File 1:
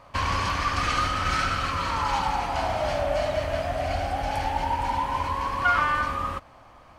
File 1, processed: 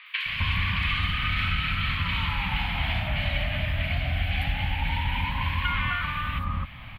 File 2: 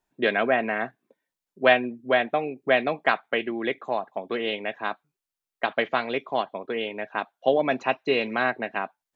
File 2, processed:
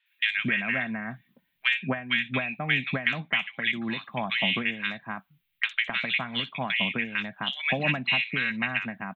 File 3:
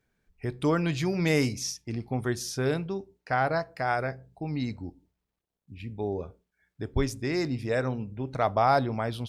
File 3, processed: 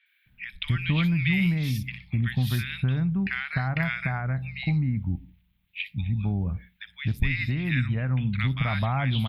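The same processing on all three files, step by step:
FFT filter 190 Hz 0 dB, 410 Hz -26 dB, 1.4 kHz -8 dB, 2.2 kHz +4 dB, 3.6 kHz +2 dB, 5.9 kHz -29 dB, 8.8 kHz -22 dB, 13 kHz -4 dB; compression 4:1, threshold -40 dBFS; three bands offset in time mids, highs, lows 60/260 ms, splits 1.4/4.7 kHz; normalise loudness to -27 LUFS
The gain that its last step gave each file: +15.5 dB, +16.5 dB, +17.0 dB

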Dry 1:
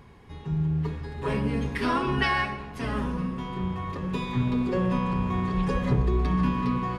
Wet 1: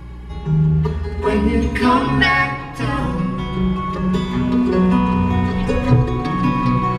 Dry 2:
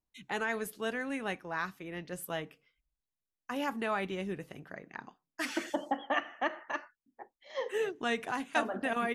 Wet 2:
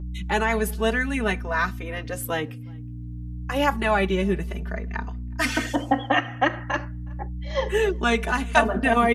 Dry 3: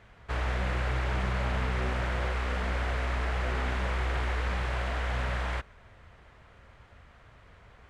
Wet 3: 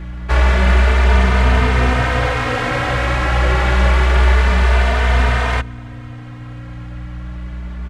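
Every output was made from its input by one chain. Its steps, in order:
mains buzz 60 Hz, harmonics 5, -44 dBFS -7 dB/octave; echo from a far wall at 63 m, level -28 dB; endless flanger 3.1 ms +0.27 Hz; peak normalisation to -2 dBFS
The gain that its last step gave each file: +13.0 dB, +14.0 dB, +18.5 dB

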